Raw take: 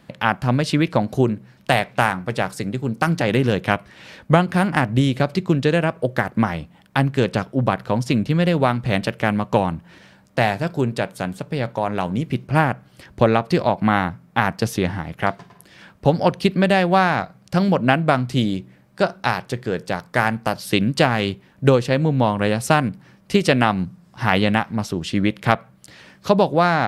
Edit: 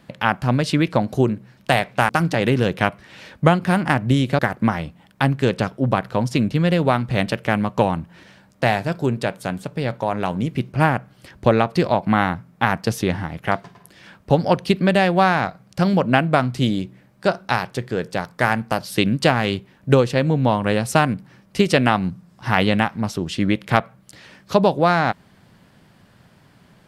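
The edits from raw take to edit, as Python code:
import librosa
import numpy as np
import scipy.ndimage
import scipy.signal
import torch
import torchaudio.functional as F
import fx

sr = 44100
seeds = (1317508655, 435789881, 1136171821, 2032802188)

y = fx.edit(x, sr, fx.cut(start_s=2.09, length_s=0.87),
    fx.cut(start_s=5.26, length_s=0.88), tone=tone)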